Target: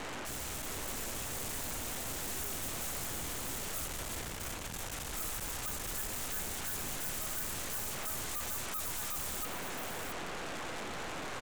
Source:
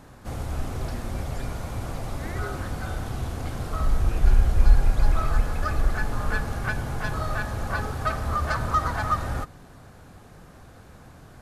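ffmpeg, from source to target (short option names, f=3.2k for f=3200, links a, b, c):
-filter_complex "[0:a]acrossover=split=230 3200:gain=0.126 1 0.224[a][b][c];[a][b][c]amix=inputs=3:normalize=0,areverse,acompressor=threshold=-38dB:ratio=8,areverse,aemphasis=mode=reproduction:type=50fm,aeval=exprs='(tanh(355*val(0)+0.7)-tanh(0.7))/355':c=same,highpass=f=95:p=1,aeval=exprs='0.00531*sin(PI/2*4.47*val(0)/0.00531)':c=same,aexciter=amount=2:drive=8:freq=6.6k,asplit=2[d][e];[e]aecho=0:1:672:0.447[f];[d][f]amix=inputs=2:normalize=0,volume=6.5dB"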